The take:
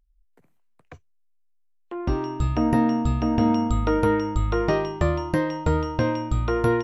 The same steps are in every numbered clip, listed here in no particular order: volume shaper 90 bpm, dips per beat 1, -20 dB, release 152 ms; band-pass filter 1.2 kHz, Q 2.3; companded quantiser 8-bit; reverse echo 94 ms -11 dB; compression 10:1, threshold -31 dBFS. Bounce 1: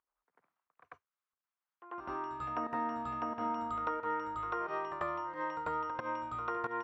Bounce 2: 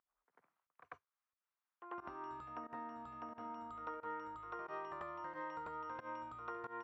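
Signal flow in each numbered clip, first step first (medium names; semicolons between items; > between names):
volume shaper > companded quantiser > band-pass filter > compression > reverse echo; companded quantiser > reverse echo > volume shaper > compression > band-pass filter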